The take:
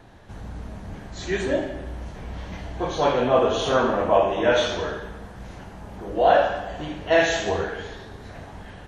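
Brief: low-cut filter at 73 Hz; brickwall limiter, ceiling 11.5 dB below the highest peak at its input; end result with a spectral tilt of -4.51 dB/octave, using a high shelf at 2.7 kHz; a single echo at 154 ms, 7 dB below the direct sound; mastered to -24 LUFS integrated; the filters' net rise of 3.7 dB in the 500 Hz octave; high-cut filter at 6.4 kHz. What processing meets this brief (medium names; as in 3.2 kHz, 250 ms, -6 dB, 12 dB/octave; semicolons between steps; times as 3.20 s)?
high-pass 73 Hz; low-pass 6.4 kHz; peaking EQ 500 Hz +4.5 dB; treble shelf 2.7 kHz +3.5 dB; peak limiter -13.5 dBFS; delay 154 ms -7 dB; trim -0.5 dB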